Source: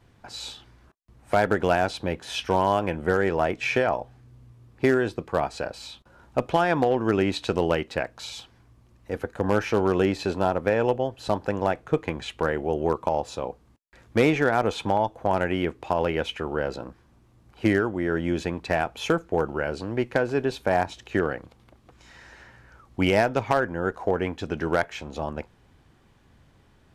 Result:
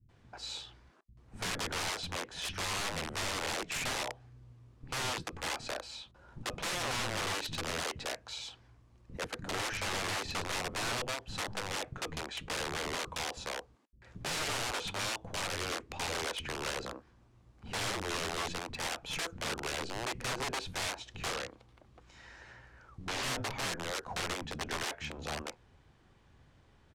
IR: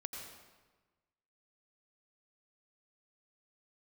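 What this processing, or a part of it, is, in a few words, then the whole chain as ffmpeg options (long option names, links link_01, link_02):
overflowing digital effects unit: -filter_complex "[0:a]aeval=exprs='(mod(16.8*val(0)+1,2)-1)/16.8':channel_layout=same,lowpass=8600,asettb=1/sr,asplit=3[link_01][link_02][link_03];[link_01]atrim=end=21.254[link_04];[link_02]atrim=start=21.25:end=23.14,asetpts=PTS-STARTPTS,afade=type=in:duration=0.004:curve=qsin,afade=type=out:start_time=1.886:duration=0.004:curve=qsin,acrossover=split=6800[link_05][link_06];[link_06]acompressor=threshold=-48dB:ratio=4:attack=1:release=60[link_07];[link_05][link_07]amix=inputs=2:normalize=0[link_08];[link_03]atrim=start=23.136[link_09];[link_04][link_08]acrossfade=duration=0.004:curve1=hsin:curve2=qsin[link_10];[link_10][link_09]acrossfade=duration=0.004:curve1=qsin:curve2=hsin,acrossover=split=240[link_11][link_12];[link_12]adelay=90[link_13];[link_11][link_13]amix=inputs=2:normalize=0,volume=-4.5dB"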